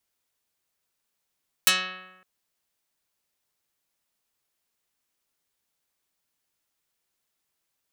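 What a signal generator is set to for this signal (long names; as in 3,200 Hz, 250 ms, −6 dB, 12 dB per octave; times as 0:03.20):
Karplus-Strong string F#3, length 0.56 s, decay 1.10 s, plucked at 0.46, dark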